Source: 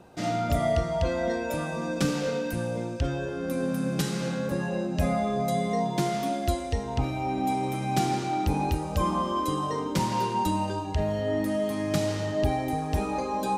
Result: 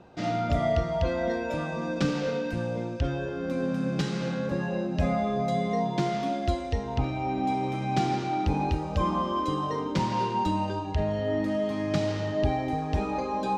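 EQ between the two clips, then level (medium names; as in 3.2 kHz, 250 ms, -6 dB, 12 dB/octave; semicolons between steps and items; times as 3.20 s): distance through air 170 m; treble shelf 4.3 kHz +7 dB; 0.0 dB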